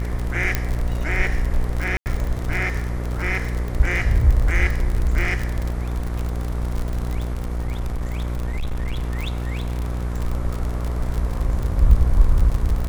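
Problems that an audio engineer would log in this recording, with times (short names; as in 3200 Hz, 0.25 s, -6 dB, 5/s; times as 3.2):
buzz 60 Hz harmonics 39 -25 dBFS
crackle 49/s -23 dBFS
0.55 pop -5 dBFS
1.97–2.06 gap 89 ms
7.3–10.04 clipped -20.5 dBFS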